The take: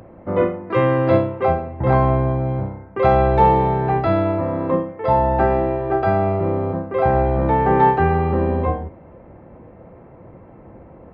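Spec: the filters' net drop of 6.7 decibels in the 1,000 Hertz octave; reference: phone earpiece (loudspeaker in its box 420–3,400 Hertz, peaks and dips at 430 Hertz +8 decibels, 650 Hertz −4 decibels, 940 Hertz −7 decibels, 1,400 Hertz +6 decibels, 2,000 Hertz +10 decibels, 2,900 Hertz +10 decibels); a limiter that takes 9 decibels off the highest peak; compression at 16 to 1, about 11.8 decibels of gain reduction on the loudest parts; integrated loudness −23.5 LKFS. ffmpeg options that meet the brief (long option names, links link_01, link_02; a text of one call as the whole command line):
ffmpeg -i in.wav -af "equalizer=frequency=1000:width_type=o:gain=-4.5,acompressor=threshold=-23dB:ratio=16,alimiter=limit=-24dB:level=0:latency=1,highpass=420,equalizer=frequency=430:width_type=q:width=4:gain=8,equalizer=frequency=650:width_type=q:width=4:gain=-4,equalizer=frequency=940:width_type=q:width=4:gain=-7,equalizer=frequency=1400:width_type=q:width=4:gain=6,equalizer=frequency=2000:width_type=q:width=4:gain=10,equalizer=frequency=2900:width_type=q:width=4:gain=10,lowpass=frequency=3400:width=0.5412,lowpass=frequency=3400:width=1.3066,volume=11dB" out.wav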